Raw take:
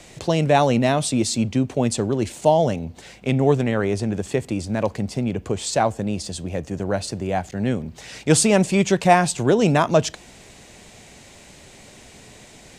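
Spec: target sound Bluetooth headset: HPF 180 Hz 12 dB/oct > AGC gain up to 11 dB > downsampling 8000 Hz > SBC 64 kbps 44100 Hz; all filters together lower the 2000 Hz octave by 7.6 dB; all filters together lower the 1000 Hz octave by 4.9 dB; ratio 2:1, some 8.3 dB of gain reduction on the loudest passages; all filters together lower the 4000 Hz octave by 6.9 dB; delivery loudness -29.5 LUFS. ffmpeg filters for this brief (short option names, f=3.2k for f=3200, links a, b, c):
-af "equalizer=f=1k:t=o:g=-6.5,equalizer=f=2k:t=o:g=-6,equalizer=f=4k:t=o:g=-7,acompressor=threshold=-28dB:ratio=2,highpass=180,dynaudnorm=m=11dB,aresample=8000,aresample=44100,volume=1dB" -ar 44100 -c:a sbc -b:a 64k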